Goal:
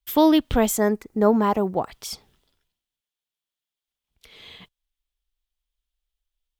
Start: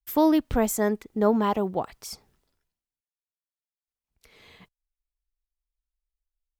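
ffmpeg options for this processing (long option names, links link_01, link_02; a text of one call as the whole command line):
ffmpeg -i in.wav -af "asetnsamples=nb_out_samples=441:pad=0,asendcmd='0.78 equalizer g -6.5;1.91 equalizer g 10.5',equalizer=frequency=3300:width=2.4:gain=9.5,volume=3.5dB" out.wav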